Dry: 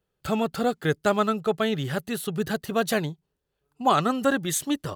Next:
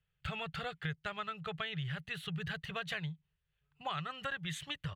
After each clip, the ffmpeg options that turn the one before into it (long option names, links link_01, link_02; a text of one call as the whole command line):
ffmpeg -i in.wav -af "firequalizer=gain_entry='entry(160,0);entry(230,-28);entry(430,-17);entry(1900,1);entry(3000,1);entry(5000,-14);entry(13000,-25)':delay=0.05:min_phase=1,acompressor=threshold=-36dB:ratio=5" out.wav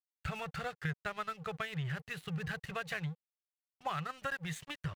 ffmpeg -i in.wav -af "equalizer=frequency=3300:width_type=o:width=0.49:gain=-9.5,aeval=exprs='sgn(val(0))*max(abs(val(0))-0.00224,0)':channel_layout=same,volume=3dB" out.wav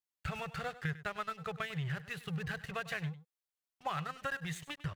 ffmpeg -i in.wav -af "aecho=1:1:100:0.158" out.wav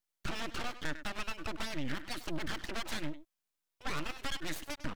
ffmpeg -i in.wav -af "aeval=exprs='(tanh(56.2*val(0)+0.35)-tanh(0.35))/56.2':channel_layout=same,aeval=exprs='abs(val(0))':channel_layout=same,volume=7dB" out.wav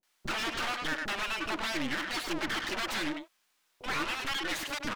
ffmpeg -i in.wav -filter_complex "[0:a]asplit=2[link_01][link_02];[link_02]highpass=frequency=720:poles=1,volume=27dB,asoftclip=type=tanh:threshold=-25dB[link_03];[link_01][link_03]amix=inputs=2:normalize=0,lowpass=frequency=3700:poles=1,volume=-6dB,acrossover=split=540[link_04][link_05];[link_05]adelay=30[link_06];[link_04][link_06]amix=inputs=2:normalize=0" out.wav